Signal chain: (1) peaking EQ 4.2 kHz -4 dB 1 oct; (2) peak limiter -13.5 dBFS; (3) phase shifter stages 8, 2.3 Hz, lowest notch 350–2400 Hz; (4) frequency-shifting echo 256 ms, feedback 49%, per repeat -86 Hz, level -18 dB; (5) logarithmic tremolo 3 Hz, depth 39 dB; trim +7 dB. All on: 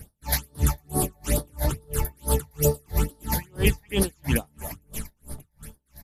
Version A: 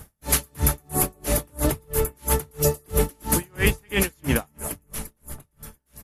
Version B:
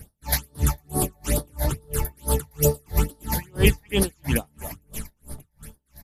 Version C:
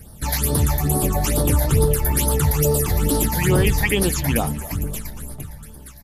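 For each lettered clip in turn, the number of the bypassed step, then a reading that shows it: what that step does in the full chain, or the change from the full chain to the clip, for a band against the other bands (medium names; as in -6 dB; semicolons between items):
3, 125 Hz band -3.5 dB; 2, momentary loudness spread change +2 LU; 5, crest factor change -6.0 dB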